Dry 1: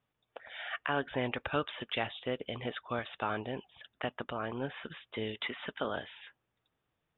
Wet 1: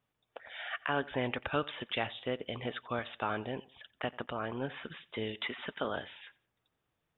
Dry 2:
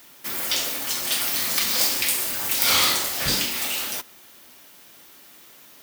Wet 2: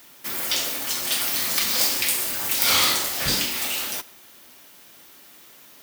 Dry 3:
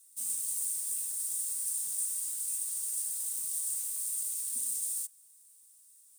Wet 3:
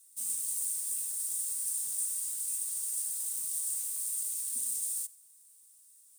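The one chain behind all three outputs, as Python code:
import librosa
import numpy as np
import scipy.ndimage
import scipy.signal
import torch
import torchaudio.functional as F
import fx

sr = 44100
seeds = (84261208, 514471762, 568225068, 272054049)

y = fx.echo_feedback(x, sr, ms=89, feedback_pct=29, wet_db=-22.0)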